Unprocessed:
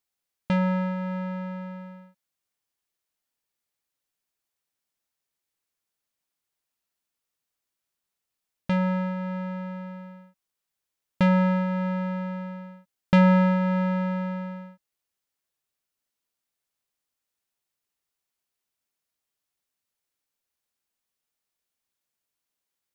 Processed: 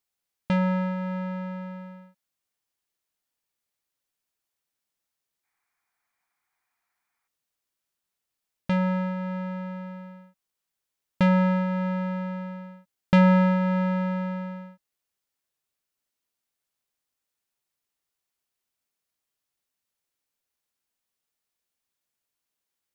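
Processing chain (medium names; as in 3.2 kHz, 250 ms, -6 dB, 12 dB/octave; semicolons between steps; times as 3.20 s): time-frequency box 5.44–7.27 s, 670–2500 Hz +12 dB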